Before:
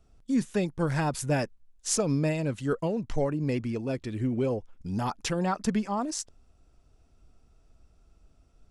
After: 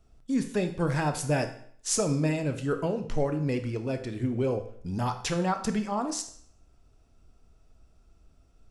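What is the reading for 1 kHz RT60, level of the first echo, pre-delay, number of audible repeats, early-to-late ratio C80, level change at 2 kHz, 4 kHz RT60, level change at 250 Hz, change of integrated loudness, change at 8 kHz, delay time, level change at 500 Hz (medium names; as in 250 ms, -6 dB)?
0.60 s, no echo, 18 ms, no echo, 14.0 dB, +1.0 dB, 0.55 s, -0.5 dB, 0.0 dB, +0.5 dB, no echo, +0.5 dB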